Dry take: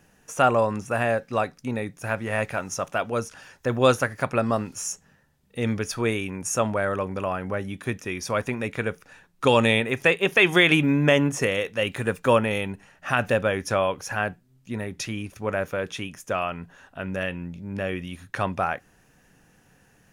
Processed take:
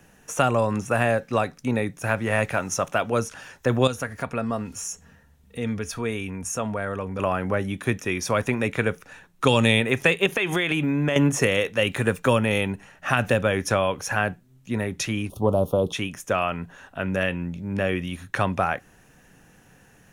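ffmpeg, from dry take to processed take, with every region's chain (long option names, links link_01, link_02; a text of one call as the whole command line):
ffmpeg -i in.wav -filter_complex "[0:a]asettb=1/sr,asplit=3[link_01][link_02][link_03];[link_01]atrim=end=3.874[link_04];[link_02]atrim=start=3.87:end=7.19,asetpts=PTS-STARTPTS,afade=type=in:duration=0.004:curve=qsin,afade=type=out:start_time=3.316:duration=0.004:curve=qsin,equalizer=frequency=73:width_type=o:width=0.82:gain=12.5,aecho=1:1:4.3:0.33,atrim=end_sample=146412,acompressor=threshold=-44dB:ratio=1.5:attack=3.2:release=140:knee=1:detection=peak[link_05];[link_03]atrim=start=7.186[link_06];[link_04][link_05]acrossfade=duration=0.004:curve1=hsin:curve2=qsin[link_07];[link_07][link_06]acrossfade=duration=0.004:curve1=qsin:curve2=hsin,asettb=1/sr,asplit=3[link_08][link_09][link_10];[link_08]atrim=end=10.264[link_11];[link_09]atrim=start=10.26:end=11.16,asetpts=PTS-STARTPTS,afade=type=in:duration=0.004:curve=qsin,afade=type=out:start_time=0.896:duration=0.004:curve=qsin,bandreject=frequency=5600:width=12,acompressor=threshold=-24dB:ratio=6:attack=3.2:release=140:knee=1:detection=peak[link_12];[link_10]atrim=start=11.156[link_13];[link_11][link_12]acrossfade=duration=0.004:curve1=hsin:curve2=qsin[link_14];[link_14][link_13]acrossfade=duration=0.004:curve1=qsin:curve2=hsin,asettb=1/sr,asplit=3[link_15][link_16][link_17];[link_15]atrim=end=15.294[link_18];[link_16]atrim=start=15.29:end=15.93,asetpts=PTS-STARTPTS,afade=type=in:duration=0.004:curve=qsin,afade=type=out:start_time=0.636:duration=0.004:curve=qsin,equalizer=frequency=6500:width_type=o:width=0.99:gain=-13.5,acontrast=33,asuperstop=centerf=1900:order=8:qfactor=0.86[link_19];[link_17]atrim=start=15.926[link_20];[link_18][link_19]acrossfade=duration=0.004:curve1=hsin:curve2=qsin[link_21];[link_21][link_20]acrossfade=duration=0.004:curve1=qsin:curve2=hsin,equalizer=frequency=4800:width=7.4:gain=-5,acrossover=split=230|3000[link_22][link_23][link_24];[link_23]acompressor=threshold=-23dB:ratio=6[link_25];[link_22][link_25][link_24]amix=inputs=3:normalize=0,volume=4.5dB" out.wav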